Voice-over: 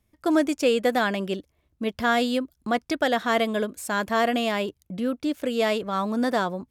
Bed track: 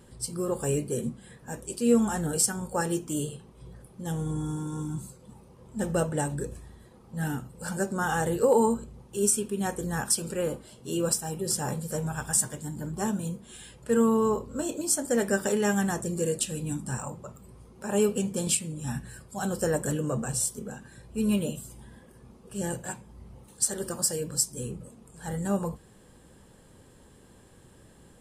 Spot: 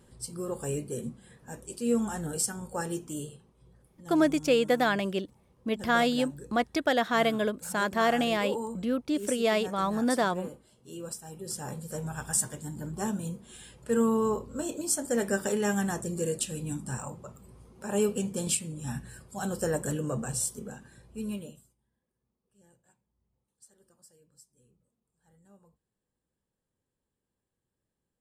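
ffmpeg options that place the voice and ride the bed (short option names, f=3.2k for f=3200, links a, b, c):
-filter_complex "[0:a]adelay=3850,volume=-2.5dB[a];[1:a]volume=5dB,afade=t=out:st=3.04:d=0.53:silence=0.421697,afade=t=in:st=11.15:d=1.26:silence=0.316228,afade=t=out:st=20.65:d=1.1:silence=0.0354813[b];[a][b]amix=inputs=2:normalize=0"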